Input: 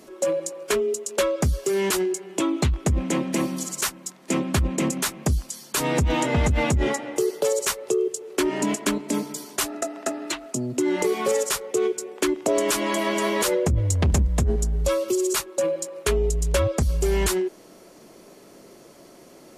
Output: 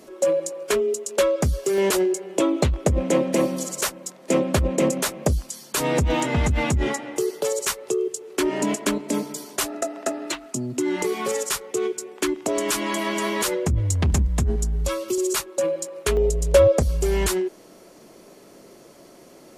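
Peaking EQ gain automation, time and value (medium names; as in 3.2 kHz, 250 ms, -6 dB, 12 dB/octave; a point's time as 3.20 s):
peaking EQ 540 Hz 0.65 oct
+3.5 dB
from 1.78 s +11.5 dB
from 5.33 s +3.5 dB
from 6.20 s -3 dB
from 8.42 s +4 dB
from 10.35 s -5.5 dB
from 15.18 s +0.5 dB
from 16.17 s +10.5 dB
from 16.88 s +1 dB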